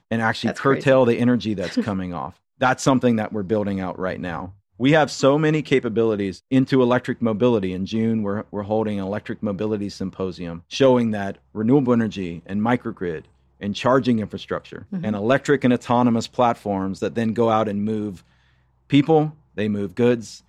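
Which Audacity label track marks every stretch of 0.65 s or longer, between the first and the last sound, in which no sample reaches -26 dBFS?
18.120000	18.920000	silence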